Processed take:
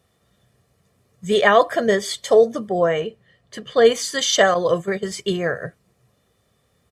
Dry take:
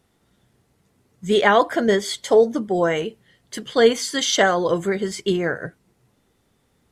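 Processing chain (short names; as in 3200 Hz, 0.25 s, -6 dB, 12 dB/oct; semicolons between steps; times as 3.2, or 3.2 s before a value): 2.69–3.85 LPF 2600 Hz 6 dB/oct; 4.54–5.03 gate -23 dBFS, range -11 dB; HPF 59 Hz; comb 1.7 ms, depth 53%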